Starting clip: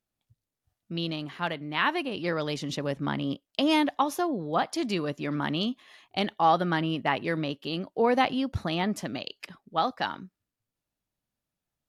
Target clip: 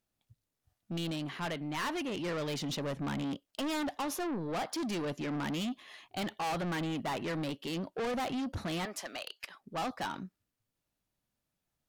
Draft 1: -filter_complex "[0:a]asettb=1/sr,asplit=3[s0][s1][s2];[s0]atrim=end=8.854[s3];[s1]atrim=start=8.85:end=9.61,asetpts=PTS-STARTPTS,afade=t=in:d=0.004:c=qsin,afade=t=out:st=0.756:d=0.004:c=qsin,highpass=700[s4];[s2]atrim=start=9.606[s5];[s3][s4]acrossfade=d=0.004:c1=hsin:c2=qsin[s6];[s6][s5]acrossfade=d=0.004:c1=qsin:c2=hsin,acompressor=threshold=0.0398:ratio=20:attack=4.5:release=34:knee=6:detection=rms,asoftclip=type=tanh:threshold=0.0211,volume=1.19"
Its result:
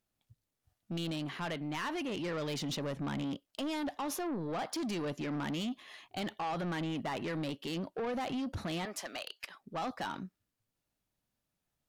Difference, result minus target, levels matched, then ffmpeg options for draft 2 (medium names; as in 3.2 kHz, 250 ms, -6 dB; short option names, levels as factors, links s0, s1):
compression: peak gain reduction +12 dB
-filter_complex "[0:a]asettb=1/sr,asplit=3[s0][s1][s2];[s0]atrim=end=8.854[s3];[s1]atrim=start=8.85:end=9.61,asetpts=PTS-STARTPTS,afade=t=in:d=0.004:c=qsin,afade=t=out:st=0.756:d=0.004:c=qsin,highpass=700[s4];[s2]atrim=start=9.606[s5];[s3][s4]acrossfade=d=0.004:c1=hsin:c2=qsin[s6];[s6][s5]acrossfade=d=0.004:c1=qsin:c2=hsin,asoftclip=type=tanh:threshold=0.0211,volume=1.19"